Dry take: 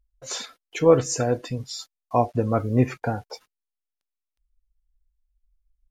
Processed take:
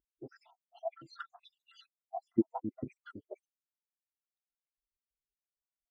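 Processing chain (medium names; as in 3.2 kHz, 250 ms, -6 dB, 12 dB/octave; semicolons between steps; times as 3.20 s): random holes in the spectrogram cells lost 80%; LFO band-pass saw up 0.42 Hz 390–2400 Hz; formant shift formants -6 st; trim +1.5 dB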